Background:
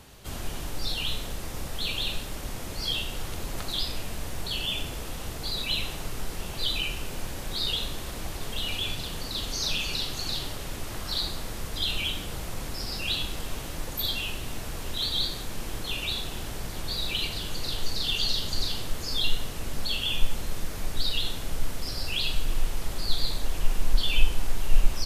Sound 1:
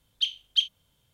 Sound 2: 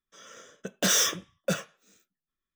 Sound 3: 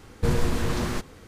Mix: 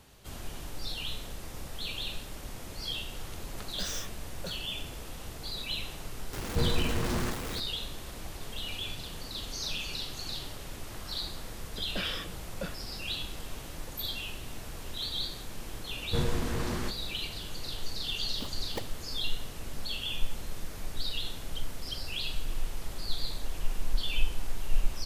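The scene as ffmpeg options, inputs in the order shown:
ffmpeg -i bed.wav -i cue0.wav -i cue1.wav -i cue2.wav -filter_complex "[2:a]asplit=2[link_01][link_02];[3:a]asplit=2[link_03][link_04];[1:a]asplit=2[link_05][link_06];[0:a]volume=-6.5dB[link_07];[link_03]aeval=exprs='val(0)+0.5*0.0473*sgn(val(0))':channel_layout=same[link_08];[link_02]aresample=11025,aresample=44100[link_09];[link_05]acrusher=samples=27:mix=1:aa=0.000001:lfo=1:lforange=27:lforate=3.5[link_10];[link_06]acrusher=bits=8:mix=0:aa=0.000001[link_11];[link_01]atrim=end=2.55,asetpts=PTS-STARTPTS,volume=-15.5dB,afade=type=in:duration=0.004:curve=hsin,afade=type=out:start_time=2.546:duration=0.004:curve=hsin,adelay=2960[link_12];[link_08]atrim=end=1.27,asetpts=PTS-STARTPTS,volume=-6.5dB,afade=type=in:duration=0.004:curve=hsin,afade=type=out:start_time=1.266:duration=0.004:curve=hsin,adelay=6330[link_13];[link_09]atrim=end=2.55,asetpts=PTS-STARTPTS,volume=-10dB,afade=type=in:duration=0.004:curve=hsin,afade=type=out:start_time=2.546:duration=0.004:curve=hsin,adelay=11130[link_14];[link_04]atrim=end=1.27,asetpts=PTS-STARTPTS,volume=-6dB,afade=type=in:duration=0.004:curve=hsin,afade=type=out:start_time=1.266:duration=0.004:curve=hsin,adelay=15900[link_15];[link_10]atrim=end=1.13,asetpts=PTS-STARTPTS,volume=-15dB,afade=type=in:duration=0.004:curve=hsin,afade=type=out:start_time=1.126:duration=0.004:curve=hsin,adelay=18190[link_16];[link_11]atrim=end=1.13,asetpts=PTS-STARTPTS,volume=-17.5dB,afade=type=in:duration=0.004:curve=hsin,afade=type=out:start_time=1.126:duration=0.004:curve=hsin,adelay=21340[link_17];[link_07][link_12][link_13][link_14][link_15][link_16][link_17]amix=inputs=7:normalize=0" out.wav

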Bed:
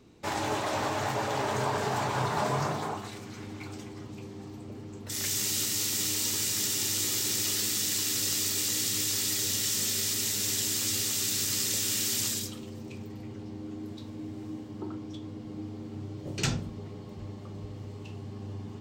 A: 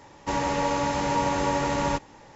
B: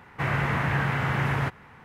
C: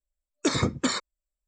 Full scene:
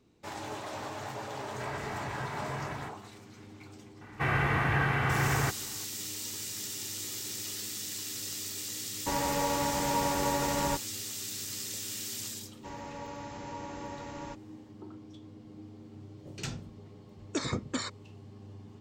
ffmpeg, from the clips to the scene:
ffmpeg -i bed.wav -i cue0.wav -i cue1.wav -i cue2.wav -filter_complex "[2:a]asplit=2[link_01][link_02];[1:a]asplit=2[link_03][link_04];[0:a]volume=-9dB[link_05];[link_01]aecho=1:1:3.1:0.54[link_06];[link_02]aecho=1:1:2.6:0.37[link_07];[link_03]agate=range=-33dB:threshold=-36dB:ratio=3:release=100:detection=peak[link_08];[link_06]atrim=end=1.84,asetpts=PTS-STARTPTS,volume=-15dB,afade=type=in:duration=0.004:curve=hsin,afade=type=out:start_time=1.836:duration=0.004:curve=hsin,adelay=1400[link_09];[link_07]atrim=end=1.84,asetpts=PTS-STARTPTS,volume=-2dB,afade=type=in:duration=0.004:curve=hsin,afade=type=out:start_time=1.836:duration=0.004:curve=hsin,adelay=176841S[link_10];[link_08]atrim=end=2.35,asetpts=PTS-STARTPTS,volume=-5dB,afade=type=in:duration=0.004:curve=hsin,afade=type=out:start_time=2.346:duration=0.004:curve=hsin,adelay=8790[link_11];[link_04]atrim=end=2.35,asetpts=PTS-STARTPTS,volume=-17dB,afade=type=in:duration=0.004:curve=hsin,afade=type=out:start_time=2.346:duration=0.004:curve=hsin,adelay=12370[link_12];[3:a]atrim=end=1.47,asetpts=PTS-STARTPTS,volume=-8dB,afade=type=in:duration=0.004:curve=hsin,afade=type=out:start_time=1.466:duration=0.004:curve=hsin,adelay=16900[link_13];[link_05][link_09][link_10][link_11][link_12][link_13]amix=inputs=6:normalize=0" out.wav

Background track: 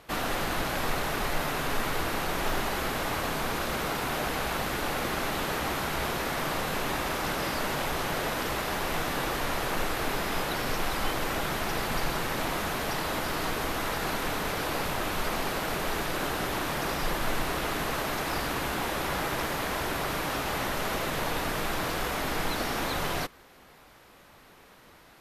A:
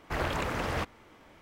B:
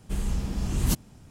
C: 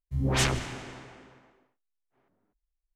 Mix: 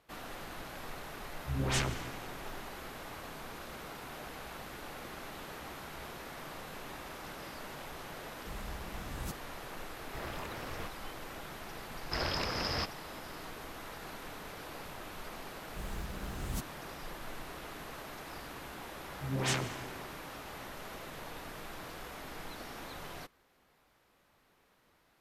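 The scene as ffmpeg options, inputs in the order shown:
ffmpeg -i bed.wav -i cue0.wav -i cue1.wav -i cue2.wav -filter_complex "[3:a]asplit=2[link_01][link_02];[2:a]asplit=2[link_03][link_04];[1:a]asplit=2[link_05][link_06];[0:a]volume=-15dB[link_07];[link_06]lowpass=frequency=5100:width_type=q:width=16[link_08];[link_04]acrusher=bits=7:mode=log:mix=0:aa=0.000001[link_09];[link_02]highpass=frequency=100:width=0.5412,highpass=frequency=100:width=1.3066[link_10];[link_01]atrim=end=2.95,asetpts=PTS-STARTPTS,volume=-6.5dB,afade=type=in:duration=0.004:curve=hsin,afade=type=out:start_time=2.946:duration=0.004:curve=hsin,adelay=1350[link_11];[link_03]atrim=end=1.3,asetpts=PTS-STARTPTS,volume=-16.5dB,afade=type=in:duration=0.004:curve=hsin,afade=type=out:start_time=1.296:duration=0.004:curve=hsin,adelay=8370[link_12];[link_05]atrim=end=1.41,asetpts=PTS-STARTPTS,volume=-12dB,afade=type=in:duration=0.004:curve=hsin,afade=type=out:start_time=1.406:duration=0.004:curve=hsin,adelay=10030[link_13];[link_08]atrim=end=1.41,asetpts=PTS-STARTPTS,volume=-5dB,afade=type=in:duration=0.004:curve=hsin,afade=type=out:start_time=1.406:duration=0.004:curve=hsin,adelay=12010[link_14];[link_09]atrim=end=1.3,asetpts=PTS-STARTPTS,volume=-13.5dB,afade=type=in:duration=0.004:curve=hsin,afade=type=out:start_time=1.296:duration=0.004:curve=hsin,adelay=15660[link_15];[link_10]atrim=end=2.95,asetpts=PTS-STARTPTS,volume=-6.5dB,afade=type=in:duration=0.004:curve=hsin,afade=type=out:start_time=2.946:duration=0.004:curve=hsin,adelay=19090[link_16];[link_07][link_11][link_12][link_13][link_14][link_15][link_16]amix=inputs=7:normalize=0" out.wav

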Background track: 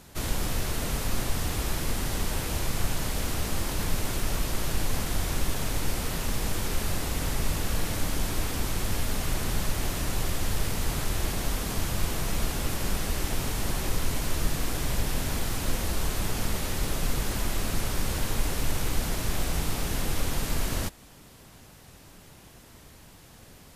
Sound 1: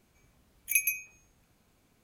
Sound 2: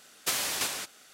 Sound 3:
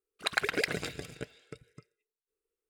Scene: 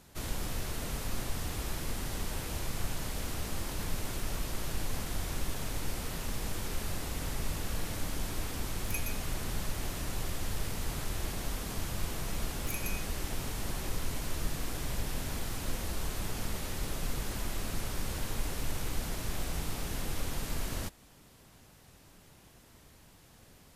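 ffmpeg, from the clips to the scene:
ffmpeg -i bed.wav -i cue0.wav -filter_complex "[1:a]asplit=2[link_01][link_02];[0:a]volume=-7dB[link_03];[link_02]acompressor=threshold=-32dB:ratio=6:attack=3.2:release=140:knee=1:detection=peak[link_04];[link_01]atrim=end=2.03,asetpts=PTS-STARTPTS,volume=-13dB,afade=type=in:duration=0.004:curve=hsin,afade=type=out:start_time=2.026:duration=0.004:curve=hsin,adelay=8190[link_05];[link_04]atrim=end=2.03,asetpts=PTS-STARTPTS,volume=-4dB,afade=type=in:duration=0.004:curve=hsin,afade=type=out:start_time=2.026:duration=0.004:curve=hsin,adelay=11990[link_06];[link_03][link_05][link_06]amix=inputs=3:normalize=0" out.wav

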